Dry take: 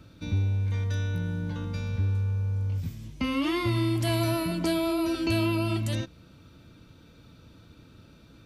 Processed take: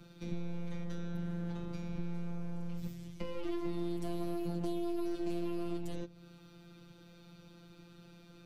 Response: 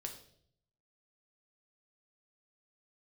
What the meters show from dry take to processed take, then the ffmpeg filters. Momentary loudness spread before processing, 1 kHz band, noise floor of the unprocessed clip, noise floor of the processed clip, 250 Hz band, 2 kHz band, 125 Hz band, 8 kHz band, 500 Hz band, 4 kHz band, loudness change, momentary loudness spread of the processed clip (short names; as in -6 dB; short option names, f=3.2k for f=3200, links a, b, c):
7 LU, -12.5 dB, -54 dBFS, -57 dBFS, -8.5 dB, -18.0 dB, -15.0 dB, -16.0 dB, -7.5 dB, -17.5 dB, -11.5 dB, 20 LU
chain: -filter_complex "[0:a]aeval=exprs='clip(val(0),-1,0.0106)':c=same,afftfilt=real='hypot(re,im)*cos(PI*b)':imag='0':win_size=1024:overlap=0.75,acrossover=split=360|750[a][b][c];[a]acompressor=threshold=-34dB:ratio=4[d];[b]acompressor=threshold=-47dB:ratio=4[e];[c]acompressor=threshold=-55dB:ratio=4[f];[d][e][f]amix=inputs=3:normalize=0,volume=1dB"